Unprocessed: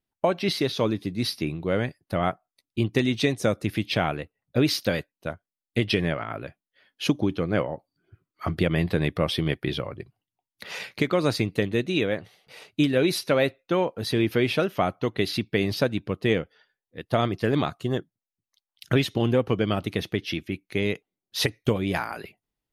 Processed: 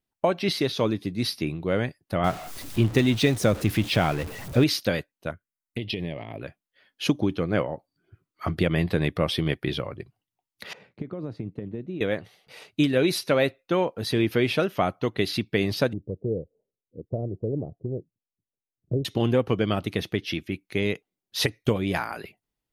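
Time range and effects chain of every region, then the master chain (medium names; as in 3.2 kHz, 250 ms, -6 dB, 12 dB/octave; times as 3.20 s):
2.24–4.64 s: jump at every zero crossing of -32.5 dBFS + bass shelf 130 Hz +6.5 dB
5.31–6.41 s: compression 4:1, threshold -25 dBFS + touch-sensitive phaser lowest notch 540 Hz, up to 1.4 kHz, full sweep at -32.5 dBFS
10.73–12.01 s: bass shelf 88 Hz -11 dB + compression, threshold -23 dBFS + band-pass filter 110 Hz, Q 0.53
15.93–19.05 s: steep low-pass 540 Hz + dynamic bell 250 Hz, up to -8 dB, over -37 dBFS, Q 0.97
whole clip: none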